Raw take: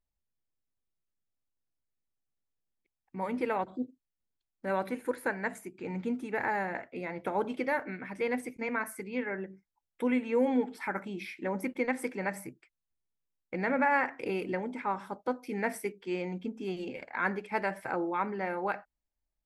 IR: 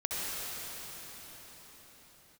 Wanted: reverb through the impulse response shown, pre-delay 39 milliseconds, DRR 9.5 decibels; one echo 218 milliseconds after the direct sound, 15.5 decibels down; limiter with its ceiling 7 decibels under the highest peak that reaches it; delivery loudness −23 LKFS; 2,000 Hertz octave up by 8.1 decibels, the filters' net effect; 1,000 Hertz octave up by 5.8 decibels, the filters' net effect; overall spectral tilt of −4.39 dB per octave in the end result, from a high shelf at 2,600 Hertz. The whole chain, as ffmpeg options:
-filter_complex "[0:a]equalizer=frequency=1000:width_type=o:gain=5,equalizer=frequency=2000:width_type=o:gain=5,highshelf=frequency=2600:gain=8,alimiter=limit=-18dB:level=0:latency=1,aecho=1:1:218:0.168,asplit=2[link_01][link_02];[1:a]atrim=start_sample=2205,adelay=39[link_03];[link_02][link_03]afir=irnorm=-1:irlink=0,volume=-17dB[link_04];[link_01][link_04]amix=inputs=2:normalize=0,volume=7.5dB"

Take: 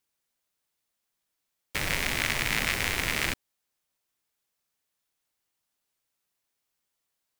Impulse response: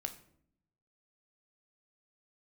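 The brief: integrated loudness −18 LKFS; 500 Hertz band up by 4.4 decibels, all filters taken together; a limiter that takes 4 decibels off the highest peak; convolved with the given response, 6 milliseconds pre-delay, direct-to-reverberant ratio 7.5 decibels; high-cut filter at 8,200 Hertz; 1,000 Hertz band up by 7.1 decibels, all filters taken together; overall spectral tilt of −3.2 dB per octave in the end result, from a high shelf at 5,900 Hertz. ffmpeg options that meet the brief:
-filter_complex "[0:a]lowpass=8200,equalizer=frequency=500:width_type=o:gain=3,equalizer=frequency=1000:width_type=o:gain=8.5,highshelf=frequency=5900:gain=-8.5,alimiter=limit=-13dB:level=0:latency=1,asplit=2[link_01][link_02];[1:a]atrim=start_sample=2205,adelay=6[link_03];[link_02][link_03]afir=irnorm=-1:irlink=0,volume=-6.5dB[link_04];[link_01][link_04]amix=inputs=2:normalize=0,volume=10dB"

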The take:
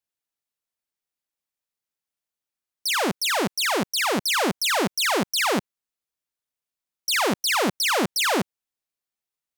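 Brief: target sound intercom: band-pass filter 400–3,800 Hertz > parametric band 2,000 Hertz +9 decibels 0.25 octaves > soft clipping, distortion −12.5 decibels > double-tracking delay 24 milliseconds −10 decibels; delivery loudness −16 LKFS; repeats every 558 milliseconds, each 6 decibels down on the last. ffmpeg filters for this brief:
ffmpeg -i in.wav -filter_complex "[0:a]highpass=400,lowpass=3800,equalizer=frequency=2000:width_type=o:width=0.25:gain=9,aecho=1:1:558|1116|1674|2232|2790|3348:0.501|0.251|0.125|0.0626|0.0313|0.0157,asoftclip=threshold=-18.5dB,asplit=2[link_01][link_02];[link_02]adelay=24,volume=-10dB[link_03];[link_01][link_03]amix=inputs=2:normalize=0,volume=9dB" out.wav

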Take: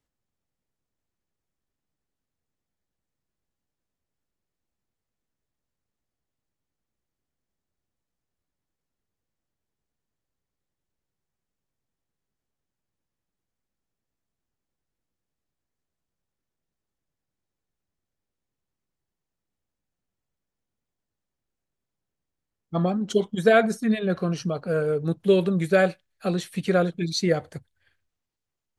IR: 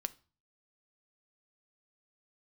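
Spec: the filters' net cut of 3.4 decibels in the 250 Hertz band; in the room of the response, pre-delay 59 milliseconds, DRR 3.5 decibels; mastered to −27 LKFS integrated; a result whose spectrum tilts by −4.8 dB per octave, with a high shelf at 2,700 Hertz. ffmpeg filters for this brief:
-filter_complex "[0:a]equalizer=frequency=250:width_type=o:gain=-5.5,highshelf=frequency=2700:gain=5,asplit=2[link_01][link_02];[1:a]atrim=start_sample=2205,adelay=59[link_03];[link_02][link_03]afir=irnorm=-1:irlink=0,volume=-3dB[link_04];[link_01][link_04]amix=inputs=2:normalize=0,volume=-3.5dB"

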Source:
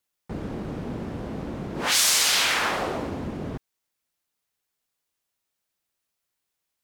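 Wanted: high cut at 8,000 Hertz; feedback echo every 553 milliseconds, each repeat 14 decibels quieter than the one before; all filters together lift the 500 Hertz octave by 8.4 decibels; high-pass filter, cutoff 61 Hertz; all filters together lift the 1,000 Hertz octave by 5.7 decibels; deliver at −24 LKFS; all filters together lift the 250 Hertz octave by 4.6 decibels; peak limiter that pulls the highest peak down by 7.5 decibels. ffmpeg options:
ffmpeg -i in.wav -af "highpass=61,lowpass=8000,equalizer=frequency=250:width_type=o:gain=3,equalizer=frequency=500:width_type=o:gain=8.5,equalizer=frequency=1000:width_type=o:gain=4.5,alimiter=limit=-16dB:level=0:latency=1,aecho=1:1:553|1106:0.2|0.0399,volume=2dB" out.wav

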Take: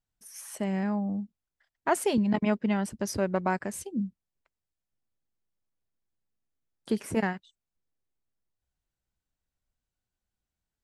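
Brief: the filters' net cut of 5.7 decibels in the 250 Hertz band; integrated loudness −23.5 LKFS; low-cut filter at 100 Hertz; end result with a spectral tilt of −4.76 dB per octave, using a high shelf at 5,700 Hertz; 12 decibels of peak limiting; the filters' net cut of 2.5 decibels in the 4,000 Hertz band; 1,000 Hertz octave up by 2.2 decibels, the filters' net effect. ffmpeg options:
ffmpeg -i in.wav -af "highpass=100,equalizer=frequency=250:width_type=o:gain=-7.5,equalizer=frequency=1000:width_type=o:gain=3.5,equalizer=frequency=4000:width_type=o:gain=-6,highshelf=frequency=5700:gain=5,volume=12dB,alimiter=limit=-11.5dB:level=0:latency=1" out.wav

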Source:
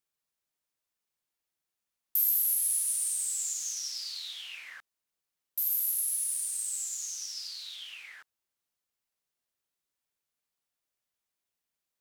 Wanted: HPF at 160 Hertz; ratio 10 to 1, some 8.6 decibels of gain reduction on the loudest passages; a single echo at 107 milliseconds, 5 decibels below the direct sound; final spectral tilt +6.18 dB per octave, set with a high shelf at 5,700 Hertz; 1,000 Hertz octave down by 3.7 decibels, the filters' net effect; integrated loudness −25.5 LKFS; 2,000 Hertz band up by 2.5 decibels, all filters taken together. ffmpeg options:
ffmpeg -i in.wav -af "highpass=160,equalizer=frequency=1000:width_type=o:gain=-7.5,equalizer=frequency=2000:width_type=o:gain=4,highshelf=frequency=5700:gain=4.5,acompressor=threshold=-27dB:ratio=10,aecho=1:1:107:0.562,volume=3.5dB" out.wav

